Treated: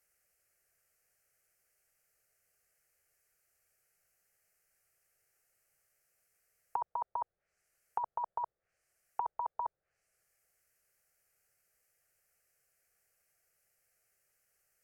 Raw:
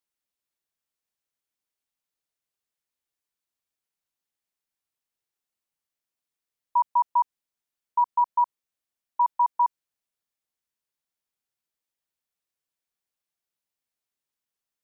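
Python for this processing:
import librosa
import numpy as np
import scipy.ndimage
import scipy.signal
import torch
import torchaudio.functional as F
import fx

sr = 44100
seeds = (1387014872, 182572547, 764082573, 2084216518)

y = fx.fixed_phaser(x, sr, hz=980.0, stages=6)
y = fx.env_lowpass_down(y, sr, base_hz=780.0, full_db=-50.0)
y = y * 10.0 ** (15.0 / 20.0)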